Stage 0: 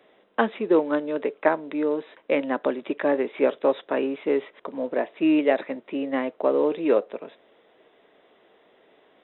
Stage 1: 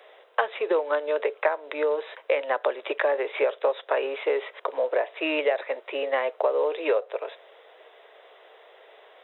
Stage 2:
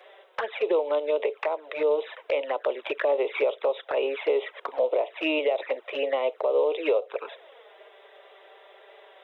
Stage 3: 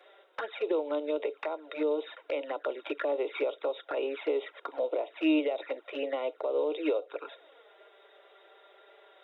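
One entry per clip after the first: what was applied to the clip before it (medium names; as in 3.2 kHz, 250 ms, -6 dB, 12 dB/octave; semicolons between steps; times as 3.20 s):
steep high-pass 450 Hz 36 dB/octave; compression 5:1, threshold -29 dBFS, peak gain reduction 13 dB; trim +8 dB
peak limiter -17 dBFS, peak gain reduction 9.5 dB; touch-sensitive flanger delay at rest 6.1 ms, full sweep at -24 dBFS; trim +3.5 dB
small resonant body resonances 300/1400/3700 Hz, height 14 dB, ringing for 65 ms; trim -7.5 dB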